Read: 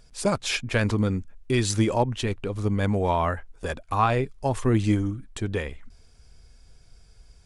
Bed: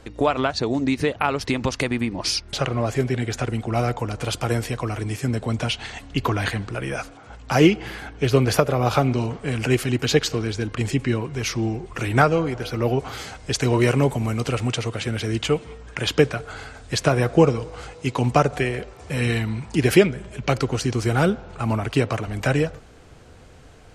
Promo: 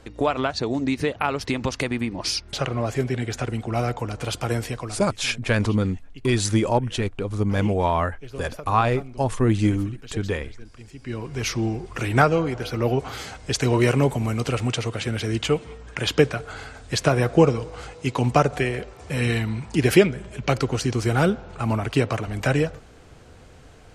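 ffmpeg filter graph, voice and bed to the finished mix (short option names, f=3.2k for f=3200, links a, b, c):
-filter_complex "[0:a]adelay=4750,volume=2dB[a];[1:a]volume=17.5dB,afade=t=out:st=4.69:d=0.39:silence=0.125893,afade=t=in:st=10.98:d=0.44:silence=0.105925[b];[a][b]amix=inputs=2:normalize=0"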